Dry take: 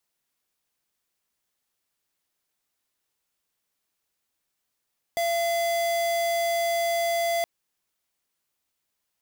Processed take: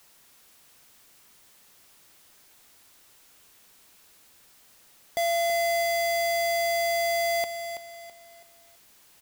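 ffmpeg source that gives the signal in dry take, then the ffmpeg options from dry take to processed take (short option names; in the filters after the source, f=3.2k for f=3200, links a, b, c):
-f lavfi -i "aevalsrc='0.0562*(2*lt(mod(680*t,1),0.5)-1)':d=2.27:s=44100"
-af "aeval=exprs='val(0)+0.5*0.00251*sgn(val(0))':c=same,aecho=1:1:329|658|987|1316:0.355|0.124|0.0435|0.0152"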